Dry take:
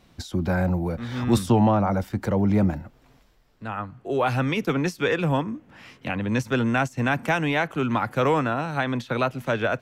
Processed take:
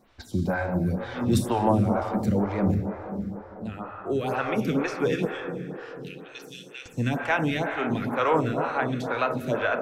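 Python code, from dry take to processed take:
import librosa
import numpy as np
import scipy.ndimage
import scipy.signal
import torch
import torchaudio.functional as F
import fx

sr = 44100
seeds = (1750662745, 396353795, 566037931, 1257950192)

y = fx.cheby2_highpass(x, sr, hz=890.0, order=4, stop_db=60, at=(5.25, 6.86))
y = fx.rev_plate(y, sr, seeds[0], rt60_s=4.6, hf_ratio=0.35, predelay_ms=0, drr_db=4.0)
y = fx.stagger_phaser(y, sr, hz=2.1)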